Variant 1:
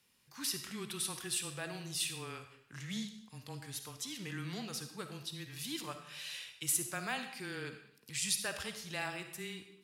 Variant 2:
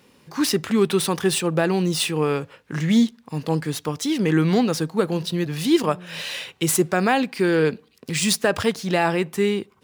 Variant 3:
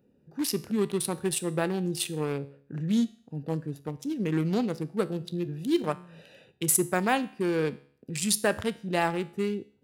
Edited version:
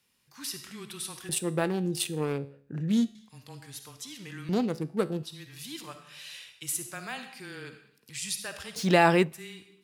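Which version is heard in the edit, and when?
1
0:01.29–0:03.15: punch in from 3
0:04.49–0:05.23: punch in from 3
0:08.76–0:09.32: punch in from 2

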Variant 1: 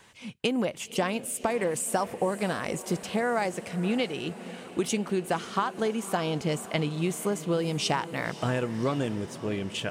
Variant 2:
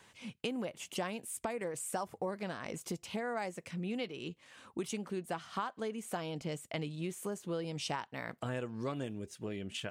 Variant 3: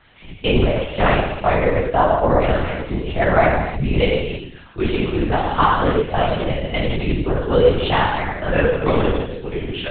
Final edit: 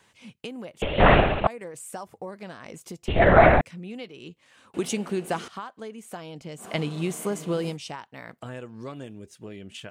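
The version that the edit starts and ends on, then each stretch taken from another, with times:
2
0:00.82–0:01.47: punch in from 3
0:03.08–0:03.61: punch in from 3
0:04.74–0:05.48: punch in from 1
0:06.62–0:07.73: punch in from 1, crossfade 0.10 s

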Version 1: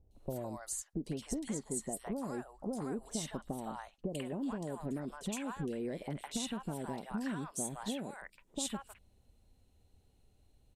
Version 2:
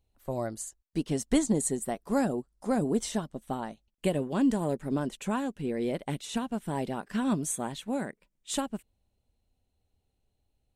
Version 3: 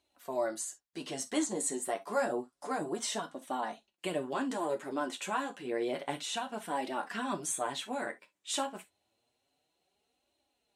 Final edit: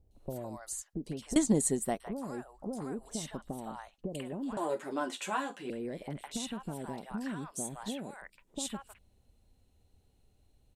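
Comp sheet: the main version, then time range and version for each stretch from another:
1
0:01.36–0:02.00: punch in from 2
0:04.57–0:05.70: punch in from 3

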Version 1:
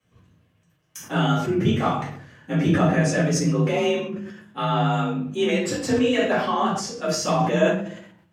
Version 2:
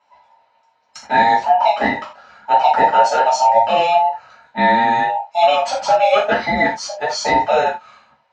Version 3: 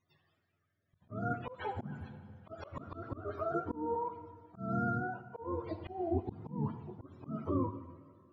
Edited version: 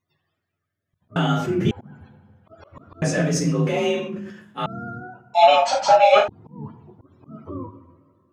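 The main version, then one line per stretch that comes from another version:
3
0:01.16–0:01.71: punch in from 1
0:03.02–0:04.66: punch in from 1
0:05.34–0:06.28: punch in from 2

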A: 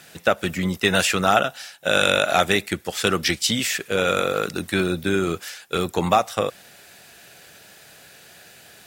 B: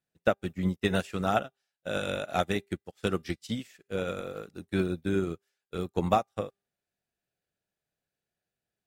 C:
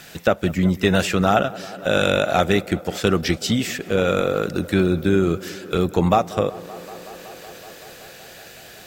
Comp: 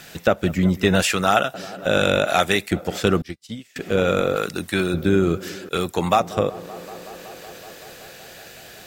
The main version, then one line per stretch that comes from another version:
C
0:01.02–0:01.54: punch in from A
0:02.27–0:02.71: punch in from A
0:03.22–0:03.76: punch in from B
0:04.36–0:04.94: punch in from A
0:05.69–0:06.20: punch in from A

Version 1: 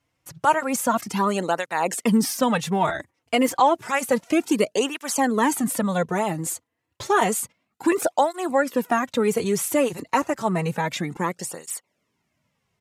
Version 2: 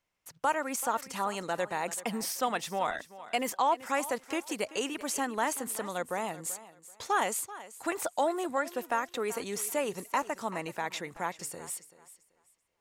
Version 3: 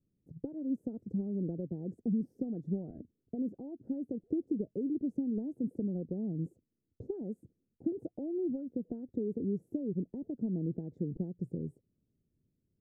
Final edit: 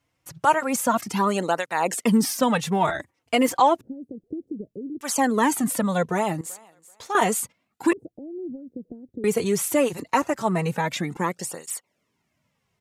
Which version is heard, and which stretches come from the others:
1
0:03.81–0:05.01: punch in from 3
0:06.41–0:07.15: punch in from 2
0:07.93–0:09.24: punch in from 3

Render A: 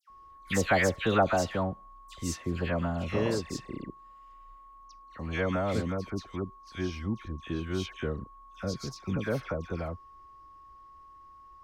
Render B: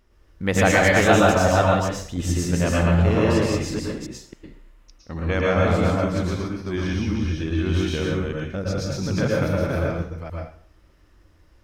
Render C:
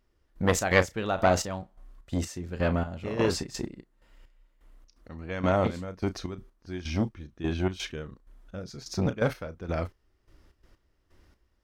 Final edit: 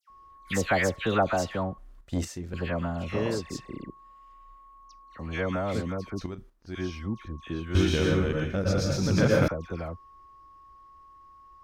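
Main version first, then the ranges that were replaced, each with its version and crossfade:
A
0:01.78–0:02.54: punch in from C
0:06.21–0:06.75: punch in from C
0:07.75–0:09.48: punch in from B

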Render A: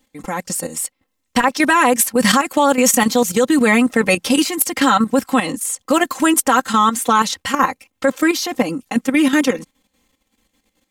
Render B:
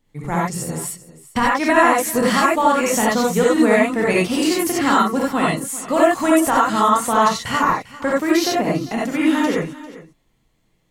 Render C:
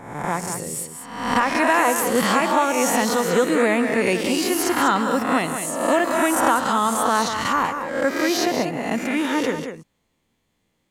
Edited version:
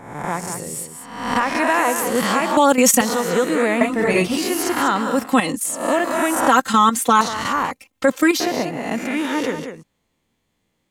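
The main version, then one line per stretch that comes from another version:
C
0:02.57–0:03.01: punch in from A
0:03.81–0:04.37: punch in from B
0:05.20–0:05.75: punch in from A, crossfade 0.24 s
0:06.48–0:07.21: punch in from A
0:07.71–0:08.40: punch in from A

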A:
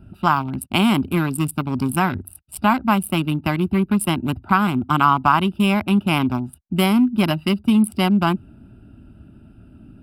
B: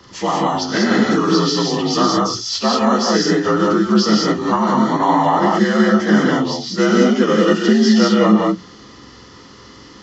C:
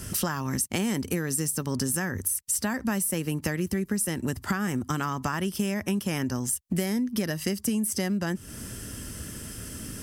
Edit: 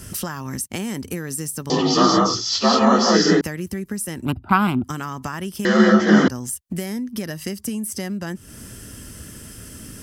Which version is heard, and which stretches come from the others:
C
0:01.70–0:03.41: punch in from B
0:04.26–0:04.84: punch in from A
0:05.65–0:06.28: punch in from B

